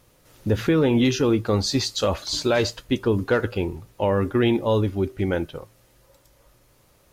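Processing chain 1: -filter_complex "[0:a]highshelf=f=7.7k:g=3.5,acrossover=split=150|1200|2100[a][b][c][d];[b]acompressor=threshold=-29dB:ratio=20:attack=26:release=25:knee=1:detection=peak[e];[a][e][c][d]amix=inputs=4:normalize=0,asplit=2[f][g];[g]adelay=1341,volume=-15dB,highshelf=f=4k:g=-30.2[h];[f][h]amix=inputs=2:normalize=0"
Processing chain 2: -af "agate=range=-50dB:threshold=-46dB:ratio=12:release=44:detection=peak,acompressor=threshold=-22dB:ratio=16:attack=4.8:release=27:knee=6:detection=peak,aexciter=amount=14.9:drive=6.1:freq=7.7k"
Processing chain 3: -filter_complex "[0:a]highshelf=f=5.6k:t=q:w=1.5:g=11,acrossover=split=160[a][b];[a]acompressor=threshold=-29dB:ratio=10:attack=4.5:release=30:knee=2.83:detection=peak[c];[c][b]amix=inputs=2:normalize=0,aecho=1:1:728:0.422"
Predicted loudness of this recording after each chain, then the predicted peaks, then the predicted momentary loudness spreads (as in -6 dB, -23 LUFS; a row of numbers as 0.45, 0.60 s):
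-25.5, -24.5, -22.0 LUFS; -10.5, -7.5, -7.0 dBFS; 17, 9, 13 LU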